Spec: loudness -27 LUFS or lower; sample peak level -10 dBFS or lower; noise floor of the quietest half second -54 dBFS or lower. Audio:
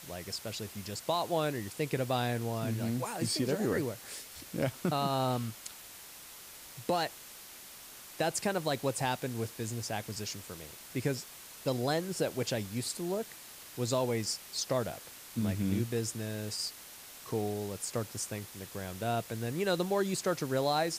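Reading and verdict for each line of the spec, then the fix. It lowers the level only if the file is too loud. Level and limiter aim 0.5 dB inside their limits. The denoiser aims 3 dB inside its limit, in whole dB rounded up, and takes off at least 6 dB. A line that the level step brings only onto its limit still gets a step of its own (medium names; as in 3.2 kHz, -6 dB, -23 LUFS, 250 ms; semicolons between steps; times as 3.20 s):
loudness -34.0 LUFS: pass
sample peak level -18.0 dBFS: pass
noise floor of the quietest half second -50 dBFS: fail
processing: noise reduction 7 dB, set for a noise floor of -50 dBFS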